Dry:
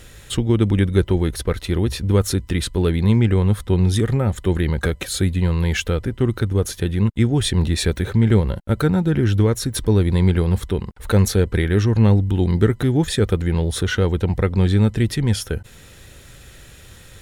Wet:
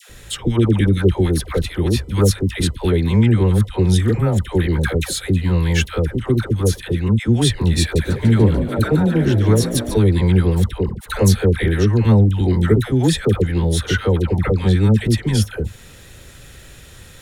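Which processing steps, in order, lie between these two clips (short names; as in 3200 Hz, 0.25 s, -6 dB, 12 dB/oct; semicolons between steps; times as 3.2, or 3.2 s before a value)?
dispersion lows, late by 98 ms, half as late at 790 Hz; 7.81–9.97 frequency-shifting echo 0.146 s, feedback 62%, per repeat +67 Hz, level -11.5 dB; gain +2 dB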